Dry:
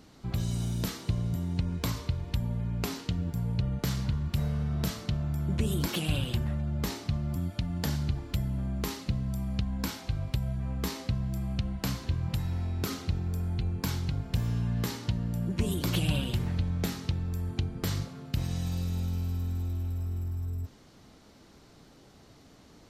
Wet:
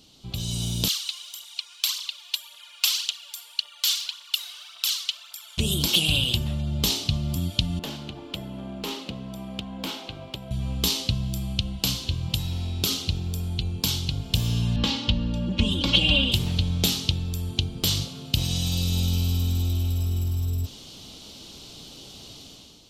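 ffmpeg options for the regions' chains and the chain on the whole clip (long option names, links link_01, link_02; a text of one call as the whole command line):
ffmpeg -i in.wav -filter_complex "[0:a]asettb=1/sr,asplit=3[link_01][link_02][link_03];[link_01]atrim=end=0.884[link_04];[link_02]atrim=start=0.88:end=5.58,asetpts=PTS-STARTPTS,afade=type=in:duration=0.004:curve=qsin,afade=type=out:start_time=4.696:duration=0.004:curve=qsin,highpass=frequency=1200:width=0.5412,highpass=frequency=1200:width=1.3066,aphaser=in_gain=1:out_gain=1:delay=2.9:decay=0.59:speed=1.8:type=triangular[link_05];[link_03]atrim=start=5.576[link_06];[link_04][link_05]acrossfade=duration=0.004:curve1=hsin:curve2=qsin[link_07];[link_07][link_06]acrossfade=duration=0.004:curve1=qsin:curve2=hsin,asettb=1/sr,asplit=3[link_08][link_09][link_10];[link_08]atrim=end=7.794[link_11];[link_09]atrim=start=7.79:end=10.51,asetpts=PTS-STARTPTS,afade=type=in:duration=0.004:curve=qsin,afade=type=out:start_time=2.716:duration=0.004:curve=qsin,acrossover=split=230 2300:gain=0.0794 1 0.126[link_12][link_13][link_14];[link_12][link_13][link_14]amix=inputs=3:normalize=0,volume=35dB,asoftclip=hard,volume=-35dB[link_15];[link_10]atrim=start=10.506[link_16];[link_11][link_15]acrossfade=duration=0.004:curve1=hsin:curve2=qsin[link_17];[link_17][link_16]acrossfade=duration=0.004:curve1=qsin:curve2=hsin,asettb=1/sr,asplit=3[link_18][link_19][link_20];[link_18]atrim=end=14.764[link_21];[link_19]atrim=start=14.76:end=16.32,asetpts=PTS-STARTPTS,afade=type=in:duration=0.004:curve=qsin,afade=type=out:start_time=1.556:duration=0.004:curve=qsin,lowpass=2900,equalizer=frequency=350:width_type=o:width=0.31:gain=-6.5,aecho=1:1:3.6:0.92,atrim=end_sample=68796[link_22];[link_20]atrim=start=16.316[link_23];[link_21][link_22]acrossfade=duration=0.004:curve1=hsin:curve2=qsin[link_24];[link_24][link_23]acrossfade=duration=0.004:curve1=qsin:curve2=hsin,highshelf=frequency=2400:width_type=q:width=3:gain=9,dynaudnorm=framelen=110:gausssize=9:maxgain=11.5dB,volume=-4dB" out.wav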